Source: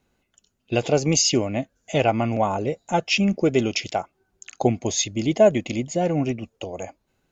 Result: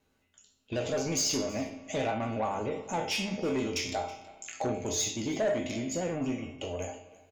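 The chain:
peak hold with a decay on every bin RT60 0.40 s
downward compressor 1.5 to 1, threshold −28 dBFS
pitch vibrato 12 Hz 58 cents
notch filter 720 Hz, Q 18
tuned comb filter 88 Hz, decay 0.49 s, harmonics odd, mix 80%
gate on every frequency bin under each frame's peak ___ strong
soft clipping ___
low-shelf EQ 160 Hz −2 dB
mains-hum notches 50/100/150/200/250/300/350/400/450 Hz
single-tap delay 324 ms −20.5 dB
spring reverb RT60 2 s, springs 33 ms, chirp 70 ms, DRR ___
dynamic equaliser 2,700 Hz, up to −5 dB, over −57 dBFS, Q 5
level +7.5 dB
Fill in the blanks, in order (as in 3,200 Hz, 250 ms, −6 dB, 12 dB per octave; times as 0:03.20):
−45 dB, −30.5 dBFS, 15.5 dB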